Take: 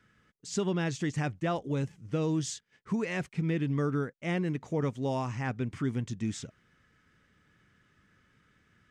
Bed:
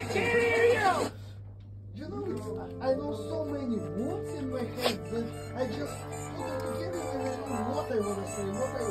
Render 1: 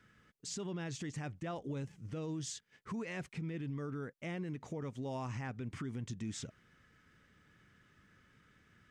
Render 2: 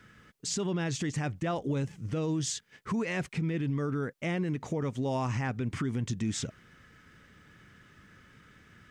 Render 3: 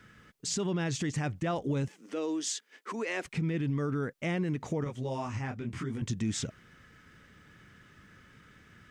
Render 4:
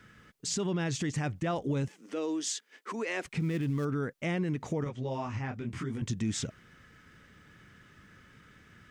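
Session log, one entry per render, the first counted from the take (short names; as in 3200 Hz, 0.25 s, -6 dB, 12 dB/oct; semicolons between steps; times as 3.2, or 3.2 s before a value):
compressor 2:1, threshold -37 dBFS, peak gain reduction 7 dB; limiter -33 dBFS, peak gain reduction 8.5 dB
gain +9.5 dB
1.88–3.25 steep high-pass 260 Hz; 4.84–6.02 detuned doubles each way 29 cents
3.4–3.85 switching dead time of 0.1 ms; 4.89–5.54 LPF 5100 Hz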